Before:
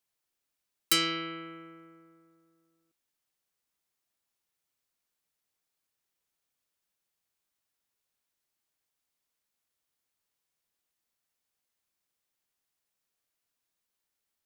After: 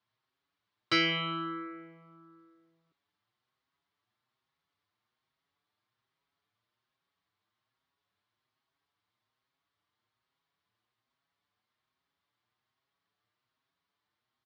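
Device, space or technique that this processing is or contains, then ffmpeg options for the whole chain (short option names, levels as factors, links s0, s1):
barber-pole flanger into a guitar amplifier: -filter_complex "[0:a]asplit=2[s0][s1];[s1]adelay=6.2,afreqshift=1.2[s2];[s0][s2]amix=inputs=2:normalize=1,asoftclip=type=tanh:threshold=0.0631,highpass=75,equalizer=f=110:t=q:w=4:g=10,equalizer=f=510:t=q:w=4:g=-5,equalizer=f=1100:t=q:w=4:g=6,equalizer=f=2600:t=q:w=4:g=-5,lowpass=f=4000:w=0.5412,lowpass=f=4000:w=1.3066,volume=2.66"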